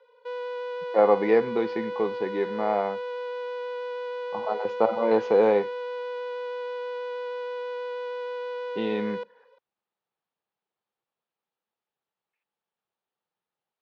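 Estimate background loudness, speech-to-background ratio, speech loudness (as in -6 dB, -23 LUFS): -33.5 LUFS, 8.0 dB, -25.5 LUFS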